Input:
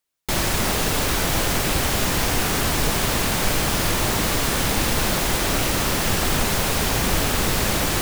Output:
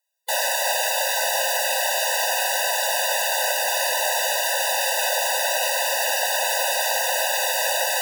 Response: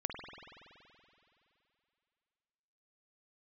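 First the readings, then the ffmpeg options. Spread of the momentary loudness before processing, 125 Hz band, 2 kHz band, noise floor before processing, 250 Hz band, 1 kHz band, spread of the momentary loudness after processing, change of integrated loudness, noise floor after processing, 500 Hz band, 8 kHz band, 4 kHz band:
0 LU, under -40 dB, +2.0 dB, -23 dBFS, under -40 dB, +1.5 dB, 0 LU, 0.0 dB, -24 dBFS, +1.0 dB, +1.0 dB, +0.5 dB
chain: -af "afftfilt=real='re*eq(mod(floor(b*sr/1024/500),2),1)':imag='im*eq(mod(floor(b*sr/1024/500),2),1)':win_size=1024:overlap=0.75,volume=1.58"

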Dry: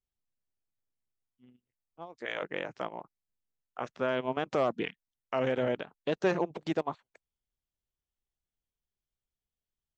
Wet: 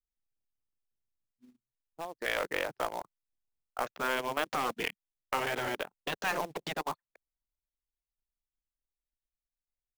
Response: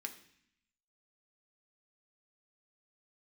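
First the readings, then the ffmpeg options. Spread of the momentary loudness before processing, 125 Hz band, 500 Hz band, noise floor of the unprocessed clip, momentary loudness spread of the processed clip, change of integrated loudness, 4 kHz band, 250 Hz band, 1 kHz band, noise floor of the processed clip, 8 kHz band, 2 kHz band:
14 LU, -7.5 dB, -5.5 dB, under -85 dBFS, 12 LU, -1.5 dB, +5.0 dB, -7.5 dB, +2.5 dB, under -85 dBFS, no reading, +4.5 dB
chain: -filter_complex "[0:a]anlmdn=0.00631,afftfilt=real='re*lt(hypot(re,im),0.178)':imag='im*lt(hypot(re,im),0.178)':win_size=1024:overlap=0.75,lowshelf=f=63:g=-6,acrossover=split=450[s0][s1];[s0]acompressor=threshold=0.00178:ratio=2[s2];[s2][s1]amix=inputs=2:normalize=0,asplit=2[s3][s4];[s4]aeval=exprs='(mod(56.2*val(0)+1,2)-1)/56.2':c=same,volume=0.355[s5];[s3][s5]amix=inputs=2:normalize=0,acrusher=bits=4:mode=log:mix=0:aa=0.000001,aeval=exprs='0.0944*(cos(1*acos(clip(val(0)/0.0944,-1,1)))-cos(1*PI/2))+0.0133*(cos(2*acos(clip(val(0)/0.0944,-1,1)))-cos(2*PI/2))':c=same,volume=1.58"

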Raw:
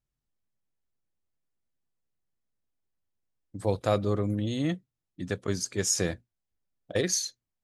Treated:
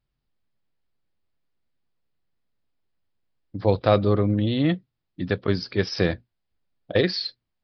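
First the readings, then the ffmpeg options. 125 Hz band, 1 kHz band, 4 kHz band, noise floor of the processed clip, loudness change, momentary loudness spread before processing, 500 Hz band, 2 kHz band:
+7.0 dB, +7.0 dB, +5.5 dB, -80 dBFS, +5.5 dB, 11 LU, +7.0 dB, +7.0 dB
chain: -af "aresample=11025,aresample=44100,volume=2.24"

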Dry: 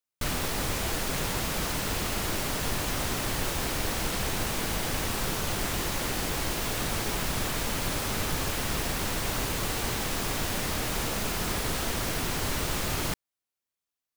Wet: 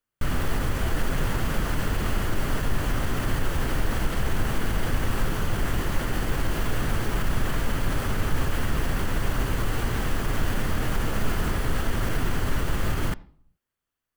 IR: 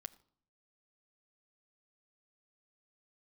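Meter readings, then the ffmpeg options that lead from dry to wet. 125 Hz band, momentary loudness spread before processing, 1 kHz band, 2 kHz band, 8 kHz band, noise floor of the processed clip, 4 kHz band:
+6.5 dB, 0 LU, +1.0 dB, +1.0 dB, -7.5 dB, under -85 dBFS, -5.0 dB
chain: -filter_complex "[0:a]alimiter=level_in=1.26:limit=0.0631:level=0:latency=1:release=135,volume=0.794,asplit=2[s0][s1];[1:a]atrim=start_sample=2205,lowpass=2800,lowshelf=f=80:g=10.5[s2];[s1][s2]afir=irnorm=-1:irlink=0,volume=2.99[s3];[s0][s3]amix=inputs=2:normalize=0"

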